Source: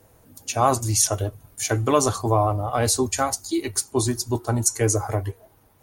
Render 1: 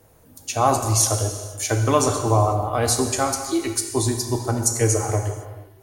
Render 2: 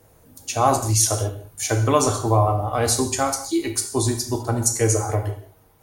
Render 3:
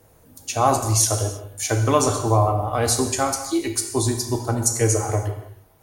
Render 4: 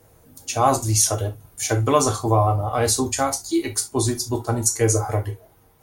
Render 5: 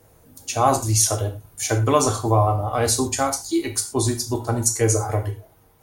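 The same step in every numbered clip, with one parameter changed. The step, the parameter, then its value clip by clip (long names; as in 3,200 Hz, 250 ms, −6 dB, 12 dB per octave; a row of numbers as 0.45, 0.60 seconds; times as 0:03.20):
reverb whose tail is shaped and stops, gate: 530, 230, 350, 90, 140 milliseconds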